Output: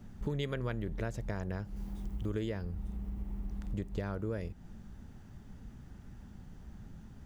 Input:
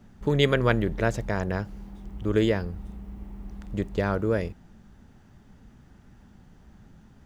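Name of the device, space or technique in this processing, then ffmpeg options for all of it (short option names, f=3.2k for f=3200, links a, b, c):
ASMR close-microphone chain: -filter_complex "[0:a]lowshelf=f=200:g=7,acompressor=threshold=-32dB:ratio=4,highshelf=f=6.5k:g=5,asettb=1/sr,asplit=3[a][b][c];[a]atrim=end=1.764[d];[b]atrim=start=1.76:end=2.35,asetpts=PTS-STARTPTS,afade=t=in:d=0.004:c=qsin,afade=t=out:st=0.586:d=0.004:c=qsin,highshelf=f=4.8k:g=6[e];[c]atrim=start=2.346[f];[d][e]acrossfade=d=0.004:c1=hsin:c2=qsin[g];[g][f]acrossfade=d=0.004:c1=qsin:c2=hsin,volume=-2.5dB"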